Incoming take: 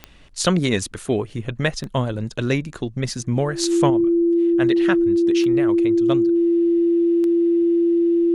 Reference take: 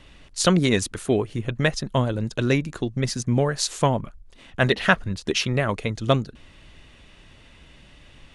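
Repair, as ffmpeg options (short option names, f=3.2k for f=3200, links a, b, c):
-af "adeclick=t=4,bandreject=f=340:w=30,asetnsamples=n=441:p=0,asendcmd='3.9 volume volume 6.5dB',volume=0dB"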